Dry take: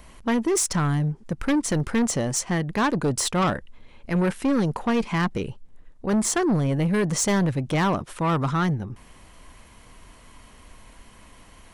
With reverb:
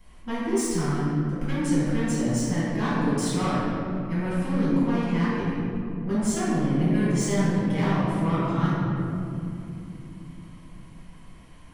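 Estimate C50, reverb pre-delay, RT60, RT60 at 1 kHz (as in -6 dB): -4.0 dB, 5 ms, 2.9 s, 2.3 s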